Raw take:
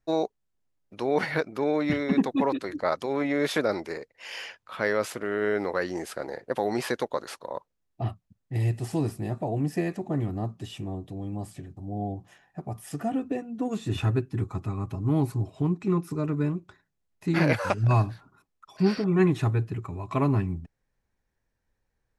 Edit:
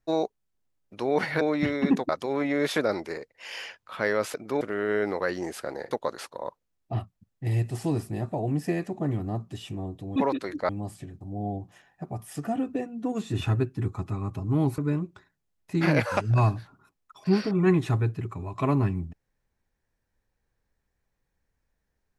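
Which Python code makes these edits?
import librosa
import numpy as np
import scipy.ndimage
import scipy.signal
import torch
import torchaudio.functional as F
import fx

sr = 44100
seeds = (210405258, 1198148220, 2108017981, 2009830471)

y = fx.edit(x, sr, fx.move(start_s=1.41, length_s=0.27, to_s=5.14),
    fx.move(start_s=2.36, length_s=0.53, to_s=11.25),
    fx.cut(start_s=6.44, length_s=0.56),
    fx.cut(start_s=15.34, length_s=0.97), tone=tone)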